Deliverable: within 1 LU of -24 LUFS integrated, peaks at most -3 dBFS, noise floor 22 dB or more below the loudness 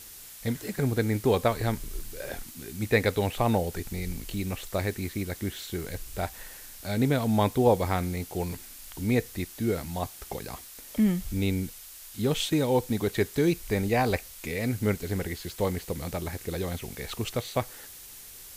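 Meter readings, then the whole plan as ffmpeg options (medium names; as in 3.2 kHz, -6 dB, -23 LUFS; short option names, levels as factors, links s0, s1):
noise floor -46 dBFS; noise floor target -51 dBFS; loudness -29.0 LUFS; peak level -8.5 dBFS; loudness target -24.0 LUFS
-> -af "afftdn=nr=6:nf=-46"
-af "volume=1.78"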